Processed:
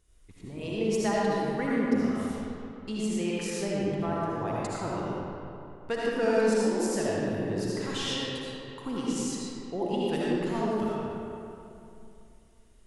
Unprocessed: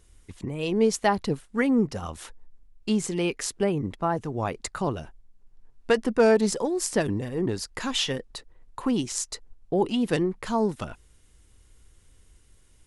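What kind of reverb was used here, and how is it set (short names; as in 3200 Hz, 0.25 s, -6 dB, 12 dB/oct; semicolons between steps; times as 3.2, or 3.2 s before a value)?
digital reverb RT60 2.8 s, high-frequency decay 0.6×, pre-delay 35 ms, DRR -7 dB; gain -10.5 dB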